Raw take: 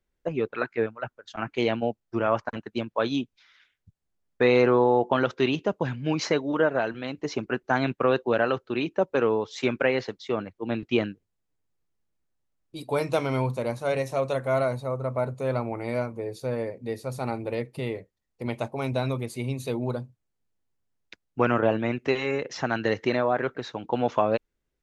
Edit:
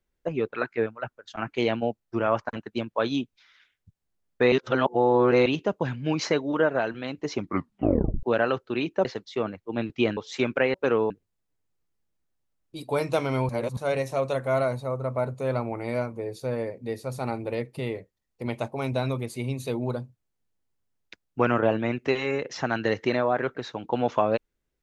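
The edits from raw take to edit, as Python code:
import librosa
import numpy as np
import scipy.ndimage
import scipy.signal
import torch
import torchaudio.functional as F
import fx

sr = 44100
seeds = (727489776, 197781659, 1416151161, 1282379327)

y = fx.edit(x, sr, fx.reverse_span(start_s=4.52, length_s=0.94),
    fx.tape_stop(start_s=7.35, length_s=0.88),
    fx.swap(start_s=9.05, length_s=0.36, other_s=9.98, other_length_s=1.12),
    fx.reverse_span(start_s=13.49, length_s=0.28), tone=tone)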